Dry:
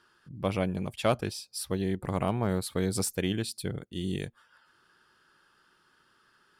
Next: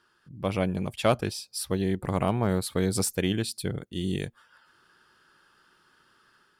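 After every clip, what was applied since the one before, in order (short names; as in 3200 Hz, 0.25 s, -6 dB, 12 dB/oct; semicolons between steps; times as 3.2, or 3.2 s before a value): AGC gain up to 5 dB; gain -2 dB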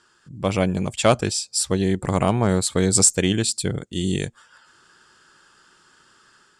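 synth low-pass 7600 Hz, resonance Q 4.8; gain +6 dB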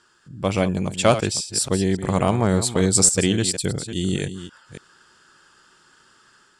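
reverse delay 0.281 s, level -11 dB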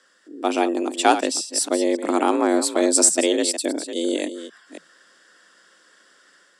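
frequency shift +160 Hz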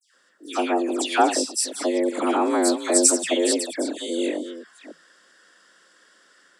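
dispersion lows, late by 0.143 s, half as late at 2400 Hz; gain -1.5 dB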